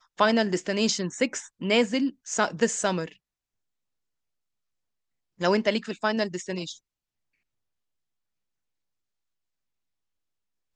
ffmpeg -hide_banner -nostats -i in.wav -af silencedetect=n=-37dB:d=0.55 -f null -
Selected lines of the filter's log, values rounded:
silence_start: 3.12
silence_end: 5.41 | silence_duration: 2.29
silence_start: 6.73
silence_end: 10.75 | silence_duration: 4.02